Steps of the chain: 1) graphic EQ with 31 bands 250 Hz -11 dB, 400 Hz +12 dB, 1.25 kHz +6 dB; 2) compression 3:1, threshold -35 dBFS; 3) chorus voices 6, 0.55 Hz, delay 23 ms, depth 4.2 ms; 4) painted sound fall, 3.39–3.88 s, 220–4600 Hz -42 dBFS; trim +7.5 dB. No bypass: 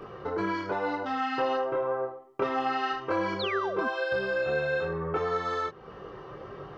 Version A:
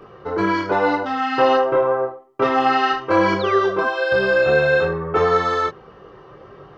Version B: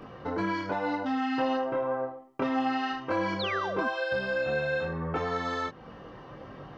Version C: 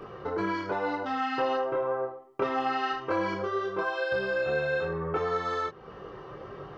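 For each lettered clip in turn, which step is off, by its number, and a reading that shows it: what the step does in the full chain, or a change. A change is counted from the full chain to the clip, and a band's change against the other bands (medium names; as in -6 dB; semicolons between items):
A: 2, mean gain reduction 8.5 dB; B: 1, 250 Hz band +4.0 dB; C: 4, 4 kHz band -2.0 dB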